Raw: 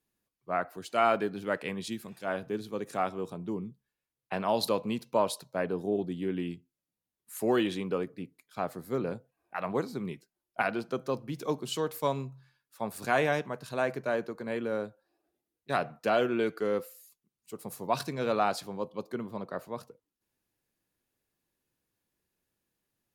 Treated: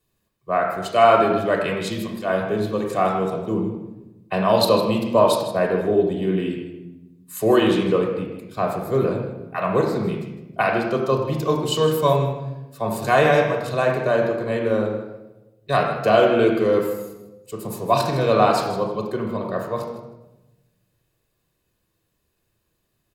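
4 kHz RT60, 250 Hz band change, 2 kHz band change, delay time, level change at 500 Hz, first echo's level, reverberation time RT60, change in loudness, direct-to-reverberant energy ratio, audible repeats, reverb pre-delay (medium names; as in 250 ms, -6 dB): 0.70 s, +10.5 dB, +9.0 dB, 157 ms, +12.5 dB, -12.0 dB, 1.0 s, +11.5 dB, 0.0 dB, 1, 3 ms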